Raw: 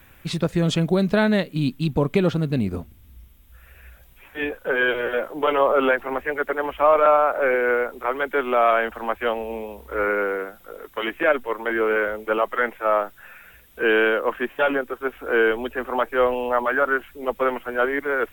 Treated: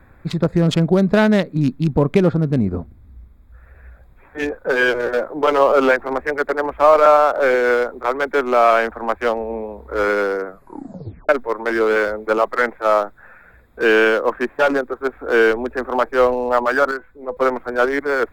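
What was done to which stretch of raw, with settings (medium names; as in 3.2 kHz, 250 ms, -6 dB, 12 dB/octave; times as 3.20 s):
10.46 s: tape stop 0.83 s
16.91–17.37 s: feedback comb 500 Hz, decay 0.29 s
whole clip: local Wiener filter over 15 samples; trim +5 dB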